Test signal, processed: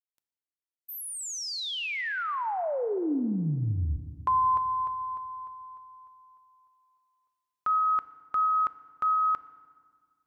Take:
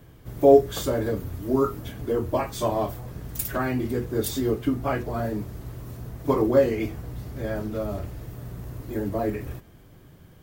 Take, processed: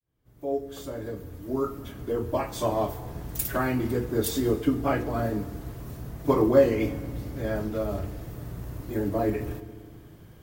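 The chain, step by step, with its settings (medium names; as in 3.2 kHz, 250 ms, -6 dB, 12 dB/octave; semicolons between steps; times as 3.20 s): fade-in on the opening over 3.20 s; FDN reverb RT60 1.8 s, low-frequency decay 1.4×, high-frequency decay 0.75×, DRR 12.5 dB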